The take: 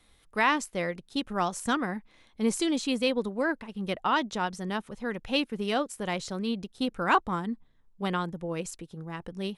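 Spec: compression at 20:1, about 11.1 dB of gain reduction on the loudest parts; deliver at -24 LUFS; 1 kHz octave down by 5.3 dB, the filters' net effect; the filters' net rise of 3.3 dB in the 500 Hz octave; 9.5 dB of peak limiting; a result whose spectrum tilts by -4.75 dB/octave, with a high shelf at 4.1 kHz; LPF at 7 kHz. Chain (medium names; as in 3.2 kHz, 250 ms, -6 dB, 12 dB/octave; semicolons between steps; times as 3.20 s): low-pass 7 kHz; peaking EQ 500 Hz +6 dB; peaking EQ 1 kHz -9 dB; treble shelf 4.1 kHz +3 dB; compression 20:1, threshold -30 dBFS; trim +16 dB; peak limiter -14 dBFS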